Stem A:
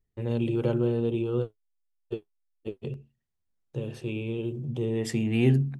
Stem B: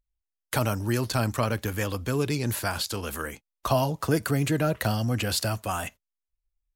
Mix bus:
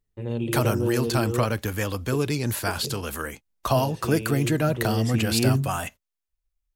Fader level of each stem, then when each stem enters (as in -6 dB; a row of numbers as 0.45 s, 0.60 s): -0.5 dB, +1.5 dB; 0.00 s, 0.00 s